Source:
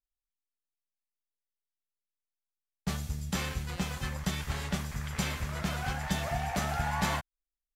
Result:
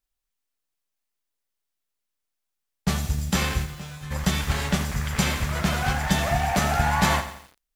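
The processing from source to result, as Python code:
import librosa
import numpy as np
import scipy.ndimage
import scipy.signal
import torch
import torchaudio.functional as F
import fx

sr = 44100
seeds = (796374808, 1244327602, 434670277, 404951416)

y = fx.comb_fb(x, sr, f0_hz=150.0, decay_s=0.6, harmonics='all', damping=0.0, mix_pct=90, at=(3.64, 4.1), fade=0.02)
y = fx.echo_crushed(y, sr, ms=85, feedback_pct=55, bits=8, wet_db=-11)
y = F.gain(torch.from_numpy(y), 9.0).numpy()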